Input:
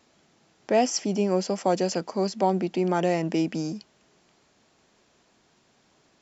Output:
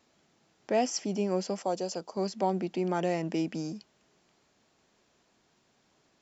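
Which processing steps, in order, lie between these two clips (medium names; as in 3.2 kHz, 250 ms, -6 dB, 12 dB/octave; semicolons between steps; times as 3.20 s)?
1.62–2.17 s: graphic EQ 125/250/2000 Hz -6/-6/-10 dB; trim -5.5 dB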